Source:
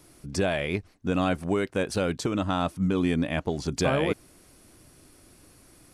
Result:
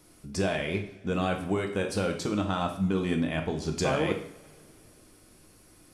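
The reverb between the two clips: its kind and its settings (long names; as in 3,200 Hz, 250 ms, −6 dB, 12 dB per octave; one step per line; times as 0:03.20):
coupled-rooms reverb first 0.56 s, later 2.7 s, from −22 dB, DRR 3 dB
level −3.5 dB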